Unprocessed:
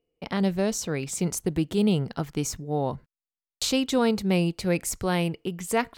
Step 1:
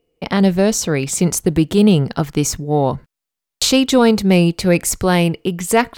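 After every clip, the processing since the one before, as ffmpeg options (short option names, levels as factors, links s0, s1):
-af "acontrast=84,volume=1.58"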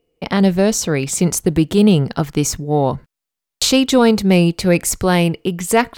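-af anull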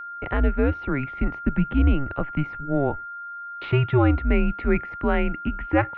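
-af "highpass=f=160:t=q:w=0.5412,highpass=f=160:t=q:w=1.307,lowpass=f=2600:t=q:w=0.5176,lowpass=f=2600:t=q:w=0.7071,lowpass=f=2600:t=q:w=1.932,afreqshift=-140,aeval=exprs='val(0)+0.0447*sin(2*PI*1400*n/s)':c=same,volume=0.501"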